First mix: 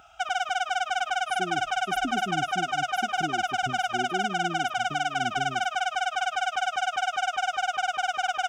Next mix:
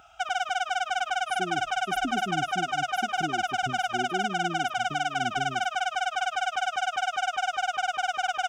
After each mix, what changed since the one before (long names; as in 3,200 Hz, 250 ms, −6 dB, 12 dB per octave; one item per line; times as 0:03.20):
reverb: off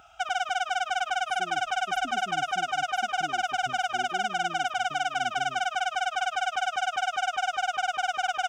speech −9.5 dB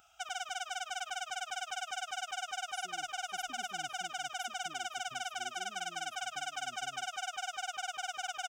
speech: entry +1.45 s
master: add first-order pre-emphasis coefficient 0.8